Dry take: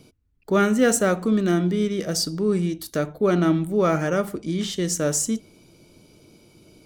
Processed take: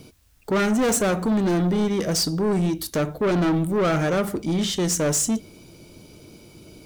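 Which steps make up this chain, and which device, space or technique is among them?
open-reel tape (saturation -23.5 dBFS, distortion -8 dB; peaking EQ 60 Hz +4.5 dB 1.11 oct; white noise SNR 42 dB); trim +5.5 dB

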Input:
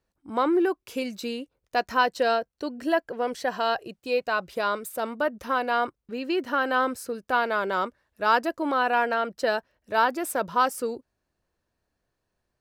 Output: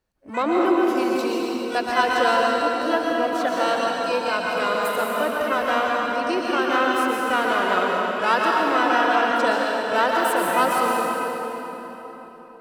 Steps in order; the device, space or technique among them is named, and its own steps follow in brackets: shimmer-style reverb (harmony voices +12 st -11 dB; reverberation RT60 4.1 s, pre-delay 108 ms, DRR -3 dB)

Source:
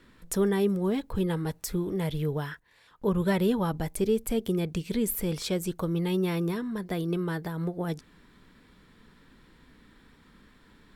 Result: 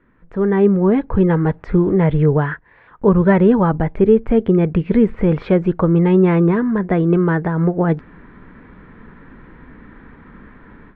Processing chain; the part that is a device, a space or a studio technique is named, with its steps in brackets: action camera in a waterproof case (low-pass 2 kHz 24 dB/octave; level rider gain up to 16 dB; AAC 96 kbps 22.05 kHz)

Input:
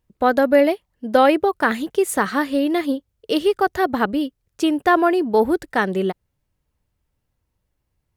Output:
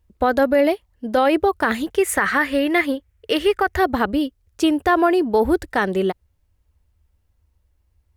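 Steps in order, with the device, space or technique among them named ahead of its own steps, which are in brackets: 1.95–3.77 s: graphic EQ 250/2000/4000 Hz -3/+11/-4 dB; car stereo with a boomy subwoofer (resonant low shelf 100 Hz +7 dB, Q 3; peak limiter -10 dBFS, peak gain reduction 8.5 dB); trim +2 dB

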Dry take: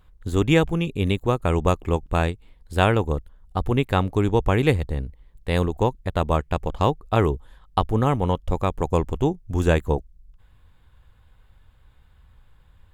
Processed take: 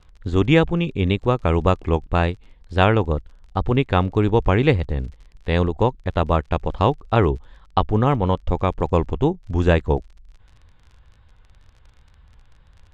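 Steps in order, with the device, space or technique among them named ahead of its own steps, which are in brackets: lo-fi chain (low-pass 5.5 kHz 12 dB/octave; wow and flutter 47 cents; crackle 41 per s -40 dBFS); low-pass 6.1 kHz 12 dB/octave; trim +2.5 dB

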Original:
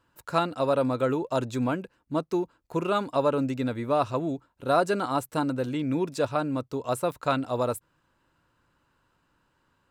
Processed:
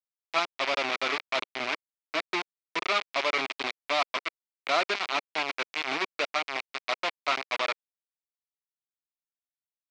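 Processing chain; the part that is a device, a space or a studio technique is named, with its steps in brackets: 1.52–2.34 s: high-pass 99 Hz 12 dB/octave; hand-held game console (bit crusher 4-bit; cabinet simulation 500–4800 Hz, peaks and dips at 510 Hz -10 dB, 890 Hz -5 dB, 1.6 kHz -4 dB, 2.3 kHz +7 dB); bass shelf 210 Hz -4 dB

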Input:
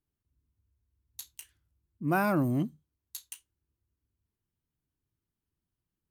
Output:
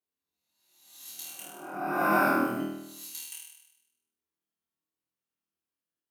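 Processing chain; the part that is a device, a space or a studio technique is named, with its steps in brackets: spectral noise reduction 7 dB; ghost voice (reverse; reverberation RT60 1.3 s, pre-delay 93 ms, DRR -0.5 dB; reverse; high-pass 380 Hz 12 dB/octave); flutter echo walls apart 4.3 m, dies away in 0.9 s; trim -1.5 dB

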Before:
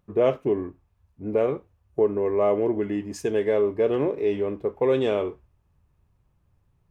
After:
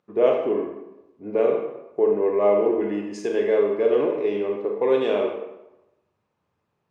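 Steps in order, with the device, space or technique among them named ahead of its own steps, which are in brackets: supermarket ceiling speaker (band-pass 270–5700 Hz; reverberation RT60 0.95 s, pre-delay 30 ms, DRR 1 dB)

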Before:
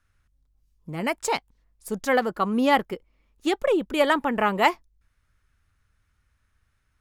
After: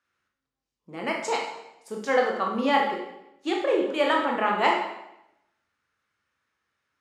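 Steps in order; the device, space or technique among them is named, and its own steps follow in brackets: supermarket ceiling speaker (band-pass 280–6300 Hz; reverberation RT60 0.85 s, pre-delay 17 ms, DRR -0.5 dB); trim -4 dB

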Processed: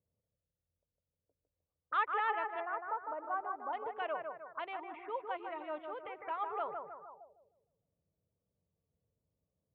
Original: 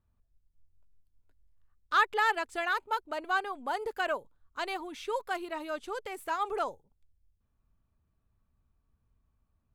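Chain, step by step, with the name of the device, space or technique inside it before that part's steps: 2.60–3.73 s: low-pass 1.5 kHz 24 dB/octave; bass shelf 97 Hz -6 dB; bucket-brigade echo 154 ms, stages 2048, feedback 42%, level -5 dB; envelope filter bass rig (touch-sensitive low-pass 490–3400 Hz up, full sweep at -33.5 dBFS; cabinet simulation 66–2000 Hz, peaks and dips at 69 Hz -8 dB, 160 Hz +4 dB, 240 Hz -8 dB, 380 Hz -7 dB, 1.6 kHz -9 dB); trim -5.5 dB

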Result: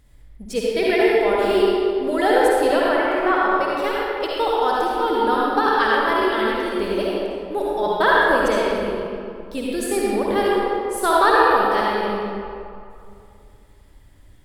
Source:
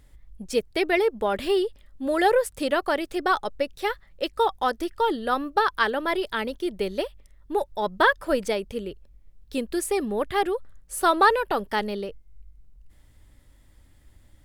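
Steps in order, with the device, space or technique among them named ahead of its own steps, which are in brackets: 2.88–3.48 s: resonant high shelf 3.2 kHz -10 dB, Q 1.5; stairwell (reverberation RT60 2.4 s, pre-delay 49 ms, DRR -5.5 dB); trim -1 dB

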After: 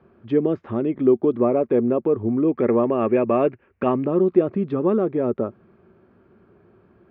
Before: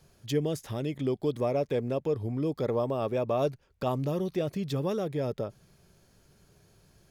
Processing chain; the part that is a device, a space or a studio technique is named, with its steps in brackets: bass cabinet (cabinet simulation 89–2100 Hz, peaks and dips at 140 Hz -8 dB, 230 Hz +9 dB, 360 Hz +10 dB, 1.2 kHz +6 dB, 1.9 kHz -4 dB); 2.48–4.06 s: high-order bell 2.2 kHz +10 dB 1 oct; trim +6 dB

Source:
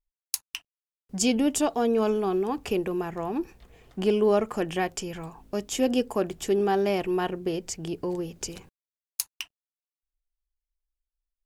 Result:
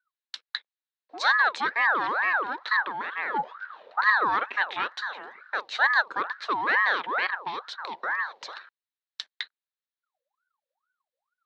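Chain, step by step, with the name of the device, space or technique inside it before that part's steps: 3.34–4.01 s: bass shelf 380 Hz +11.5 dB; voice changer toy (ring modulator with a swept carrier 1 kHz, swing 50%, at 2.2 Hz; cabinet simulation 570–4100 Hz, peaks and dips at 680 Hz -5 dB, 1.7 kHz +6 dB, 4 kHz +9 dB); trim +2 dB

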